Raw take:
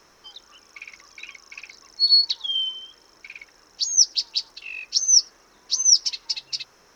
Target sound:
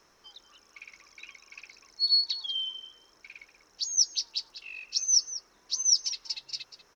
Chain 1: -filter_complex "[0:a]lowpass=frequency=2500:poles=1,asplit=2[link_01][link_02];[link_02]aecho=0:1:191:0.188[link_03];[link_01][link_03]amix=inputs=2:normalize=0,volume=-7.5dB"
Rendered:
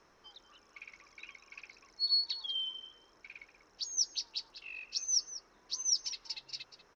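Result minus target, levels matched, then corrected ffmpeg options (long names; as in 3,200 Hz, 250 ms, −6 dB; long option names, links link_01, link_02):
2,000 Hz band +4.0 dB
-filter_complex "[0:a]asplit=2[link_01][link_02];[link_02]aecho=0:1:191:0.188[link_03];[link_01][link_03]amix=inputs=2:normalize=0,volume=-7.5dB"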